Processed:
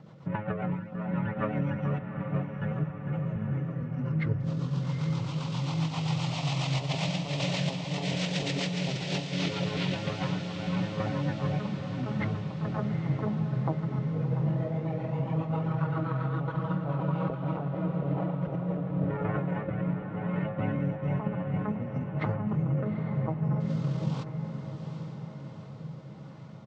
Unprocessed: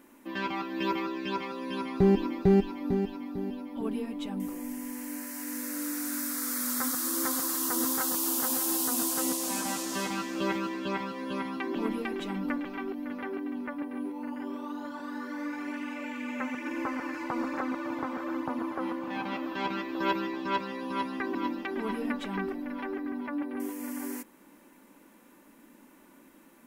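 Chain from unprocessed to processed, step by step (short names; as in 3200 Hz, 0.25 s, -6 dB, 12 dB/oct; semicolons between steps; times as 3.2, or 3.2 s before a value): Chebyshev band-pass 120–4700 Hz, order 2; notch 3000 Hz, Q 13; negative-ratio compressor -36 dBFS, ratio -0.5; pitch shift -10.5 st; rotary speaker horn 7.5 Hz, later 1 Hz, at 16.32; diffused feedback echo 0.829 s, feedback 58%, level -8 dB; gain +7 dB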